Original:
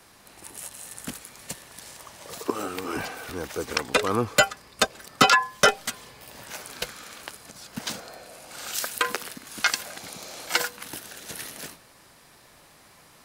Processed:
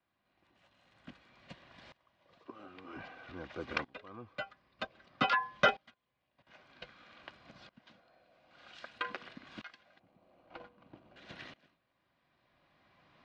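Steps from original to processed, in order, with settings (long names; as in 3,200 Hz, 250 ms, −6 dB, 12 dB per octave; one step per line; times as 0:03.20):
0:09.99–0:11.16: running median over 25 samples
low-pass filter 3,600 Hz 24 dB per octave
0:05.91–0:06.47: output level in coarse steps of 15 dB
notch comb filter 440 Hz
tremolo with a ramp in dB swelling 0.52 Hz, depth 22 dB
level −5 dB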